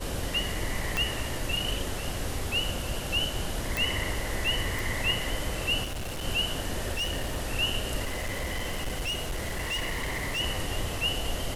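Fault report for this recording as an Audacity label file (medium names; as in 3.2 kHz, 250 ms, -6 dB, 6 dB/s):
0.970000	0.970000	pop -12 dBFS
3.770000	3.770000	pop
4.790000	4.790000	pop
5.830000	6.250000	clipped -31 dBFS
6.920000	7.410000	clipped -26.5 dBFS
8.040000	10.410000	clipped -27.5 dBFS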